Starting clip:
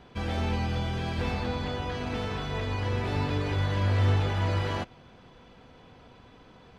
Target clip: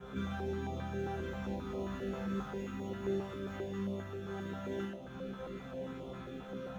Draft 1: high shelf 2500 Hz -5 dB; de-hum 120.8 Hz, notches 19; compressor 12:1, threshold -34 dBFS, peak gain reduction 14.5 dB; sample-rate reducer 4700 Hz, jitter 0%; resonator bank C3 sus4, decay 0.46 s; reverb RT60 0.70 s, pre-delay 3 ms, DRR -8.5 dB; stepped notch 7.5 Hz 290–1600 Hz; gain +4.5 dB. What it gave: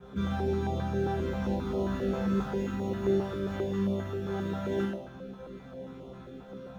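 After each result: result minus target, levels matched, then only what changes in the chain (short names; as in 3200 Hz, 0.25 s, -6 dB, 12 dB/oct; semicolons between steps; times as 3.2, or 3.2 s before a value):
compressor: peak gain reduction -8.5 dB; 2000 Hz band -5.0 dB
change: compressor 12:1, threshold -43 dBFS, peak gain reduction 23 dB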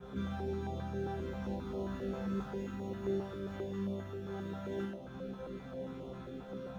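2000 Hz band -3.5 dB
change: high shelf 2500 Hz +5.5 dB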